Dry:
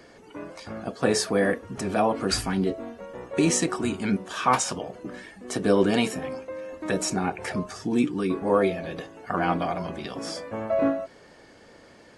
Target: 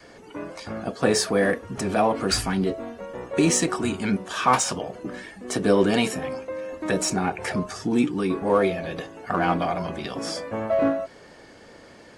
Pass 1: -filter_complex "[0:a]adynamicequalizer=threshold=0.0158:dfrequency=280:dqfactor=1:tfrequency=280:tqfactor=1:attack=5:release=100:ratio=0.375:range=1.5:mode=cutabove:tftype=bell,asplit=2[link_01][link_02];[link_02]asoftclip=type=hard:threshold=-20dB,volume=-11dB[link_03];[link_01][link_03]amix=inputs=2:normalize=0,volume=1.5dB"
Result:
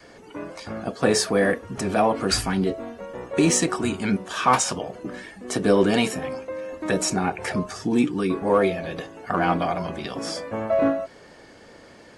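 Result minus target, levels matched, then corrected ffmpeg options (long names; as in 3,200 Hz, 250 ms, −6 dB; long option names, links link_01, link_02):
hard clipping: distortion −7 dB
-filter_complex "[0:a]adynamicequalizer=threshold=0.0158:dfrequency=280:dqfactor=1:tfrequency=280:tqfactor=1:attack=5:release=100:ratio=0.375:range=1.5:mode=cutabove:tftype=bell,asplit=2[link_01][link_02];[link_02]asoftclip=type=hard:threshold=-28.5dB,volume=-11dB[link_03];[link_01][link_03]amix=inputs=2:normalize=0,volume=1.5dB"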